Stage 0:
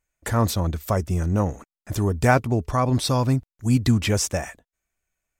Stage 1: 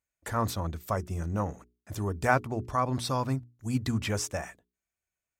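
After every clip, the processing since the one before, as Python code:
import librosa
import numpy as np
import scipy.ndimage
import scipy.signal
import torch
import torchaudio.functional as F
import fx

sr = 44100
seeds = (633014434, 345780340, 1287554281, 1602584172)

y = scipy.signal.sosfilt(scipy.signal.butter(2, 46.0, 'highpass', fs=sr, output='sos'), x)
y = fx.hum_notches(y, sr, base_hz=60, count=7)
y = fx.dynamic_eq(y, sr, hz=1200.0, q=0.98, threshold_db=-36.0, ratio=4.0, max_db=6)
y = y * librosa.db_to_amplitude(-9.0)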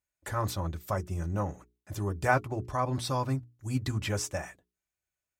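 y = fx.notch_comb(x, sr, f0_hz=230.0)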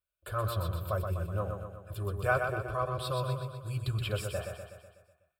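y = fx.fixed_phaser(x, sr, hz=1300.0, stages=8)
y = fx.echo_feedback(y, sr, ms=124, feedback_pct=56, wet_db=-5.5)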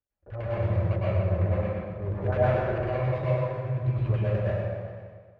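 y = scipy.signal.medfilt(x, 41)
y = fx.filter_lfo_lowpass(y, sr, shape='square', hz=9.9, low_hz=780.0, high_hz=2300.0, q=1.3)
y = fx.rev_plate(y, sr, seeds[0], rt60_s=1.4, hf_ratio=0.75, predelay_ms=95, drr_db=-8.0)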